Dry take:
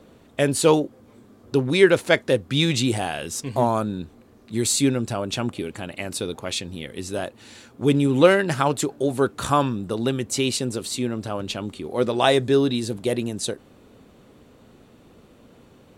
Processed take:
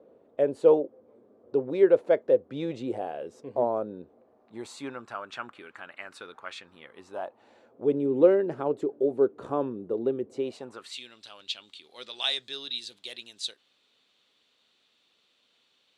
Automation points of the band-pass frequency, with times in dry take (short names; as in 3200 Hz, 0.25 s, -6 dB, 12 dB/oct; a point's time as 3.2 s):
band-pass, Q 2.5
4.02 s 510 Hz
5.22 s 1400 Hz
6.59 s 1400 Hz
8.11 s 420 Hz
10.34 s 420 Hz
10.8 s 1300 Hz
11.01 s 3700 Hz